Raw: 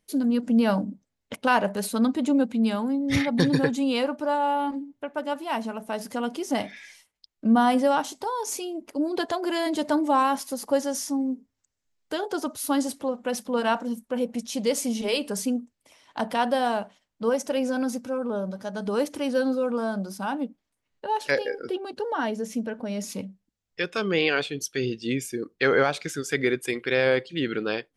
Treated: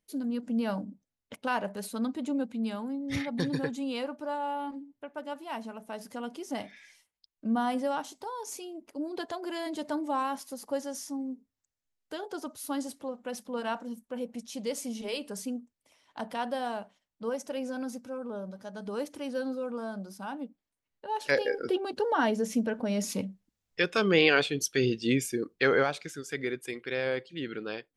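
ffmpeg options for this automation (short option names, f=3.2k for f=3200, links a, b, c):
-af "volume=1dB,afade=t=in:st=21.05:d=0.51:silence=0.316228,afade=t=out:st=25.17:d=0.94:silence=0.316228"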